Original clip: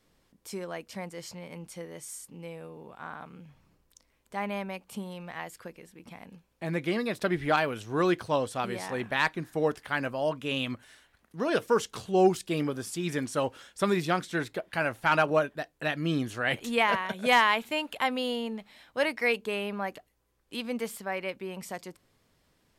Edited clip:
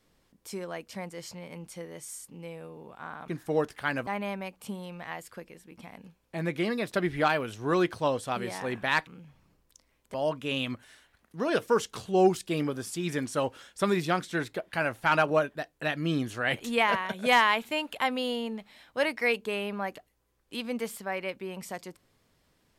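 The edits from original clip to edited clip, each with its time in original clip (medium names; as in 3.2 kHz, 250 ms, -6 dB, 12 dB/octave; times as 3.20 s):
3.28–4.35 s: swap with 9.35–10.14 s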